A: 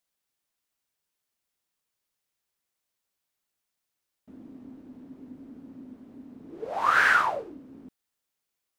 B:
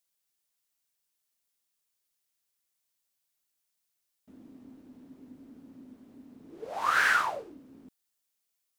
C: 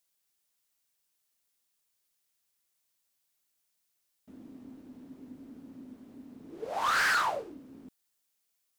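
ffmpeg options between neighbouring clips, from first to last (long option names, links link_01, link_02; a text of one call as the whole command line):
ffmpeg -i in.wav -af "highshelf=frequency=3300:gain=9.5,volume=-5.5dB" out.wav
ffmpeg -i in.wav -af "asoftclip=type=hard:threshold=-26.5dB,volume=2.5dB" out.wav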